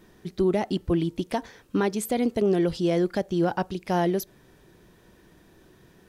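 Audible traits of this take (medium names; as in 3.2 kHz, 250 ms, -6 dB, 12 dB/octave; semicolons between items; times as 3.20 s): noise floor -57 dBFS; spectral tilt -6.0 dB/octave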